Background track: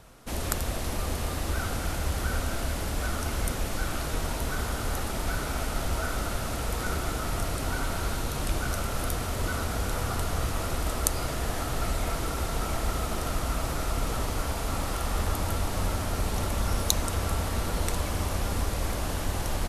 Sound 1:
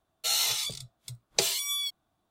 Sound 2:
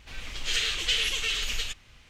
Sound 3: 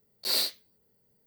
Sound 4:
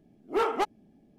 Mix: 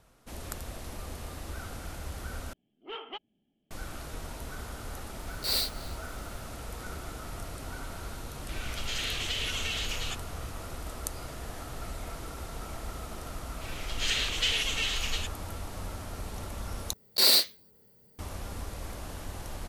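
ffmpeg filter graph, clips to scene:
-filter_complex "[3:a]asplit=2[a][b];[2:a]asplit=2[c][d];[0:a]volume=-10dB[e];[4:a]lowpass=f=3.1k:t=q:w=15[f];[a]asplit=2[g][h];[h]adelay=285.7,volume=-18dB,highshelf=f=4k:g=-6.43[i];[g][i]amix=inputs=2:normalize=0[j];[c]acompressor=threshold=-28dB:ratio=6:attack=3.2:release=140:knee=1:detection=peak[k];[b]alimiter=level_in=17.5dB:limit=-1dB:release=50:level=0:latency=1[l];[e]asplit=3[m][n][o];[m]atrim=end=2.534[p];[f]atrim=end=1.18,asetpts=PTS-STARTPTS,volume=-17dB[q];[n]atrim=start=3.706:end=16.934[r];[l]atrim=end=1.26,asetpts=PTS-STARTPTS,volume=-9dB[s];[o]atrim=start=18.186[t];[j]atrim=end=1.26,asetpts=PTS-STARTPTS,volume=-2dB,afade=t=in:d=0.004:c=hsin,afade=t=out:st=1.256:d=0.004:c=hsin,adelay=5190[u];[k]atrim=end=2.09,asetpts=PTS-STARTPTS,volume=-1dB,afade=t=in:d=0.004:c=hsin,afade=t=out:st=2.086:d=0.004:c=hsin,adelay=371322S[v];[d]atrim=end=2.09,asetpts=PTS-STARTPTS,volume=-2dB,afade=t=in:d=0.004:c=hsin,afade=t=out:st=2.086:d=0.004:c=hsin,adelay=13540[w];[p][q]acrossfade=d=0.004:c1=hsin:c2=hsin[x];[x][r]acrossfade=d=0.004:c1=hsin:c2=hsin[y];[y][s]acrossfade=d=0.004:c1=hsin:c2=hsin[z];[z][t]acrossfade=d=0.004:c1=hsin:c2=hsin[aa];[aa][u][v][w]amix=inputs=4:normalize=0"

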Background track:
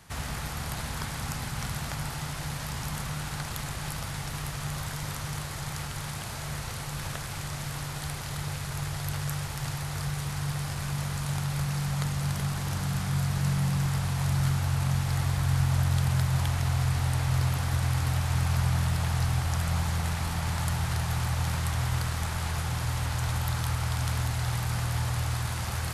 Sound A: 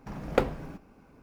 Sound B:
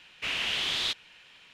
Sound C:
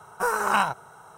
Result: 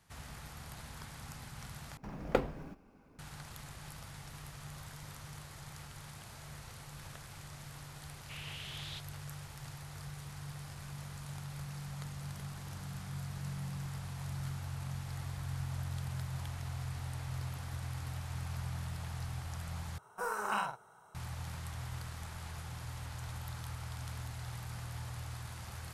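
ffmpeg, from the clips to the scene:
-filter_complex "[0:a]volume=-14dB[a];[3:a]asplit=2[b][c];[c]adelay=48,volume=-4dB[d];[b][d]amix=inputs=2:normalize=0[e];[a]asplit=3[f][g][h];[f]atrim=end=1.974[i];[1:a]atrim=end=1.22,asetpts=PTS-STARTPTS,volume=-5.5dB[j];[g]atrim=start=3.186:end=19.984[k];[e]atrim=end=1.17,asetpts=PTS-STARTPTS,volume=-13.5dB[l];[h]atrim=start=21.146[m];[2:a]atrim=end=1.53,asetpts=PTS-STARTPTS,volume=-17dB,afade=t=in:d=0.004:c=hsin,afade=t=out:st=1.526:d=0.004:c=hsin,adelay=8070[n];[i][j]acrossfade=d=0.004:c1=hsin:c2=hsin[o];[o][k]acrossfade=d=0.004:c1=hsin:c2=hsin[p];[p][l]acrossfade=d=0.004:c1=hsin:c2=hsin[q];[q][m]acrossfade=d=0.004:c1=hsin:c2=hsin[r];[r][n]amix=inputs=2:normalize=0"

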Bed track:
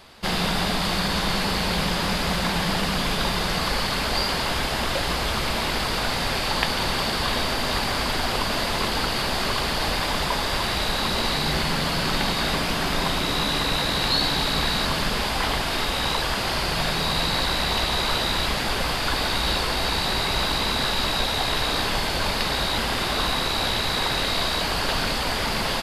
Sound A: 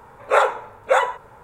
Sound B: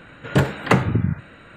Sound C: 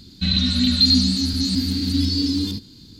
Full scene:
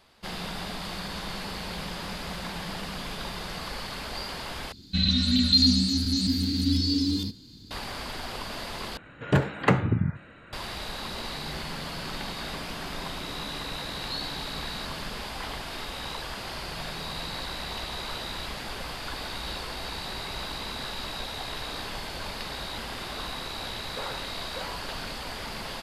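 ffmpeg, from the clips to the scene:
-filter_complex "[0:a]volume=-11.5dB[a];[2:a]highshelf=f=7k:g=-9.5[b];[1:a]acompressor=threshold=-20dB:ratio=6:attack=3.2:release=140:knee=1:detection=peak[c];[a]asplit=3[d][e][f];[d]atrim=end=4.724[g];[3:a]atrim=end=2.99,asetpts=PTS-STARTPTS,volume=-4dB[h];[e]atrim=start=7.706:end=8.974[i];[b]atrim=end=1.56,asetpts=PTS-STARTPTS,volume=-4.5dB[j];[f]atrim=start=10.526[k];[c]atrim=end=1.43,asetpts=PTS-STARTPTS,volume=-15dB,afade=t=in:d=0.004:c=hsin,afade=t=out:st=1.426:d=0.004:c=hsin,adelay=23660[l];[g][h]acrossfade=d=0.004:c1=hsin:c2=hsin[m];[m][i]acrossfade=d=0.004:c1=hsin:c2=hsin[n];[n][j]acrossfade=d=0.004:c1=hsin:c2=hsin[o];[o][k]acrossfade=d=0.004:c1=hsin:c2=hsin[p];[p][l]amix=inputs=2:normalize=0"

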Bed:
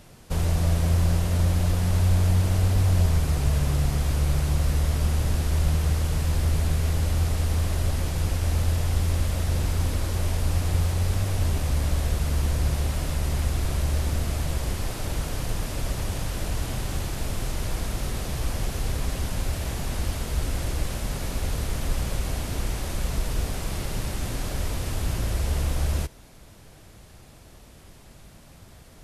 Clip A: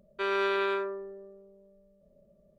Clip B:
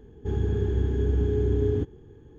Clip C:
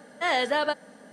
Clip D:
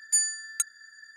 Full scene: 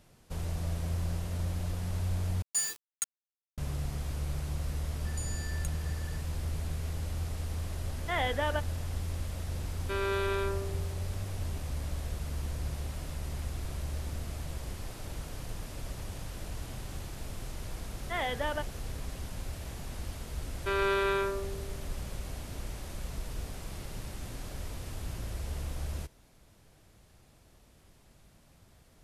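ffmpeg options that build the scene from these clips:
-filter_complex "[4:a]asplit=2[a][b];[3:a]asplit=2[c][d];[1:a]asplit=2[e][f];[0:a]volume=-11.5dB[g];[a]acrusher=bits=4:mix=0:aa=0.000001[h];[b]acompressor=threshold=-37dB:ratio=6:attack=3.2:release=140:knee=1:detection=peak[i];[c]aresample=8000,aresample=44100[j];[e]equalizer=f=1.3k:w=0.39:g=-3.5[k];[d]aresample=8000,aresample=44100[l];[g]asplit=2[m][n];[m]atrim=end=2.424[o];[h]atrim=end=1.16,asetpts=PTS-STARTPTS,volume=-7dB[p];[n]atrim=start=3.576[q];[i]atrim=end=1.16,asetpts=PTS-STARTPTS,volume=-3.5dB,afade=t=in:d=0.004:c=hsin,afade=t=out:st=1.156:d=0.004:c=hsin,adelay=222705S[r];[j]atrim=end=1.12,asetpts=PTS-STARTPTS,volume=-6.5dB,afade=t=in:d=0.004:c=hsin,afade=t=out:st=1.116:d=0.004:c=hsin,adelay=7870[s];[k]atrim=end=2.58,asetpts=PTS-STARTPTS,volume=-1.5dB,afade=t=in:d=0.004:c=hsin,afade=t=out:st=2.576:d=0.004:c=hsin,adelay=427770S[t];[l]atrim=end=1.12,asetpts=PTS-STARTPTS,volume=-8.5dB,afade=t=in:d=0.004:c=hsin,afade=t=out:st=1.116:d=0.004:c=hsin,adelay=17890[u];[f]atrim=end=2.58,asetpts=PTS-STARTPTS,volume=-0.5dB,afade=t=in:d=0.004:c=hsin,afade=t=out:st=2.576:d=0.004:c=hsin,adelay=20470[v];[o][p]acrossfade=d=0.004:c1=hsin:c2=hsin[w];[w][q]acrossfade=d=0.004:c1=hsin:c2=hsin[x];[x][r][s][t][u][v]amix=inputs=6:normalize=0"

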